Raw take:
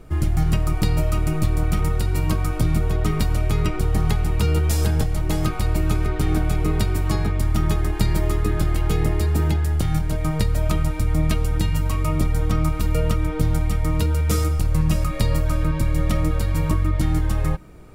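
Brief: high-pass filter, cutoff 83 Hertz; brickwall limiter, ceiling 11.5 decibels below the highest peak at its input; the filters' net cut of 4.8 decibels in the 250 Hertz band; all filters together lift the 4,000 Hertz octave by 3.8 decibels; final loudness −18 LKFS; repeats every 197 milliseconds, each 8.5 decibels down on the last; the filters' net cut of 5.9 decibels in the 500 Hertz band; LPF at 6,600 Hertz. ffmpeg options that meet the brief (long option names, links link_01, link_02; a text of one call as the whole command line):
ffmpeg -i in.wav -af "highpass=83,lowpass=6600,equalizer=frequency=250:width_type=o:gain=-6.5,equalizer=frequency=500:width_type=o:gain=-5.5,equalizer=frequency=4000:width_type=o:gain=5.5,alimiter=limit=-18.5dB:level=0:latency=1,aecho=1:1:197|394|591|788:0.376|0.143|0.0543|0.0206,volume=9.5dB" out.wav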